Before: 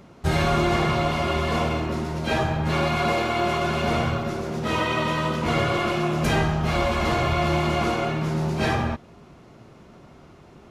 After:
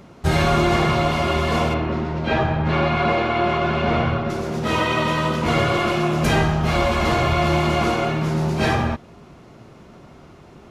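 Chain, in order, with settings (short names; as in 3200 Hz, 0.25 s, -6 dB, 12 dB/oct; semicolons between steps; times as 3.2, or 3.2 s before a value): 1.74–4.3 LPF 3200 Hz 12 dB/oct; gain +3.5 dB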